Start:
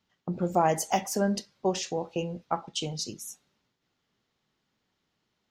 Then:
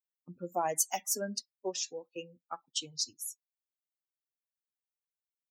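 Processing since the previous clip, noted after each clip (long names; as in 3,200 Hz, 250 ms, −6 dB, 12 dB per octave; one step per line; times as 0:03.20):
spectral dynamics exaggerated over time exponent 2
high-pass filter 130 Hz
bass and treble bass −8 dB, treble +13 dB
level −5.5 dB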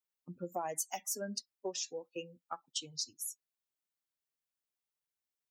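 downward compressor 3 to 1, threshold −37 dBFS, peak gain reduction 10.5 dB
level +1 dB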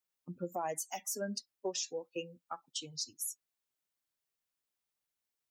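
brickwall limiter −29 dBFS, peak gain reduction 6.5 dB
level +2.5 dB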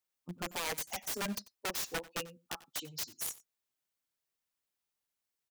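in parallel at −11 dB: bit reduction 6 bits
on the sum: wrap-around overflow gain 30 dB
single-tap delay 92 ms −19.5 dB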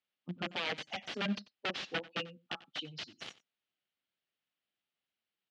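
loudspeaker in its box 120–4,000 Hz, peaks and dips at 200 Hz +3 dB, 440 Hz −3 dB, 990 Hz −7 dB, 3,000 Hz +5 dB
level +2 dB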